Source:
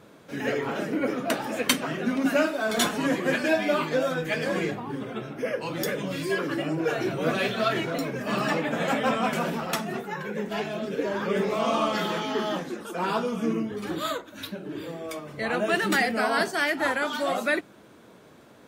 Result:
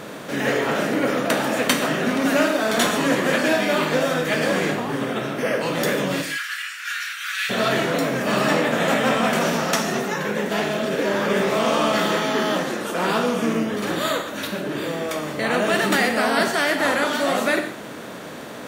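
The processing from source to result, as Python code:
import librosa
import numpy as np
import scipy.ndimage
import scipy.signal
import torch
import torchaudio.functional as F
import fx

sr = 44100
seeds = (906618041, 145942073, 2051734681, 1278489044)

y = fx.bin_compress(x, sr, power=0.6)
y = fx.steep_highpass(y, sr, hz=1400.0, slope=48, at=(6.21, 7.49), fade=0.02)
y = fx.peak_eq(y, sr, hz=5900.0, db=7.5, octaves=0.49, at=(9.41, 10.19))
y = fx.rev_gated(y, sr, seeds[0], gate_ms=170, shape='flat', drr_db=7.0)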